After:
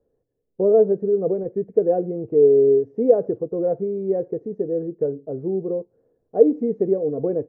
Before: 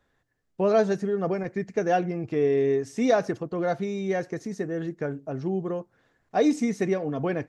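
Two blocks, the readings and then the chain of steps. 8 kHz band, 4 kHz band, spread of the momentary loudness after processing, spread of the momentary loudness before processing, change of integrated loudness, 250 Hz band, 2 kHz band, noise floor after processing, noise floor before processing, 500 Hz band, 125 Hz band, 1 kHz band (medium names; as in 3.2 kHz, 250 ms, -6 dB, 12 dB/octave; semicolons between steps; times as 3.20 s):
under -35 dB, under -35 dB, 10 LU, 9 LU, +6.0 dB, +1.5 dB, under -20 dB, -73 dBFS, -72 dBFS, +7.5 dB, -1.5 dB, -5.5 dB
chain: resonant low-pass 470 Hz, resonance Q 5; trim -2.5 dB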